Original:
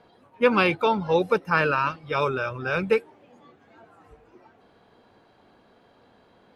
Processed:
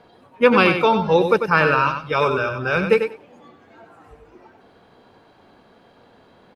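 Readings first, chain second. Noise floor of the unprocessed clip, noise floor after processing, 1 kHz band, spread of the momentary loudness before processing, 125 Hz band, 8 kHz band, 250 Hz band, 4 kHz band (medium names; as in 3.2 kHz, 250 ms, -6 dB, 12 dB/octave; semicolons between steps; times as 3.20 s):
-59 dBFS, -53 dBFS, +5.5 dB, 6 LU, +5.5 dB, no reading, +6.0 dB, +5.5 dB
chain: feedback delay 95 ms, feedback 16%, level -7.5 dB; trim +5 dB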